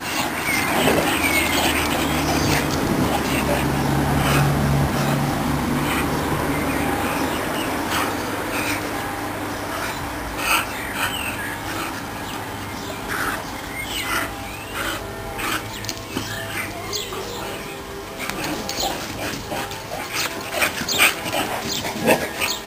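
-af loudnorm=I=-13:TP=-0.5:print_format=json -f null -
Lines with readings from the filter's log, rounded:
"input_i" : "-22.0",
"input_tp" : "-1.3",
"input_lra" : "7.1",
"input_thresh" : "-32.0",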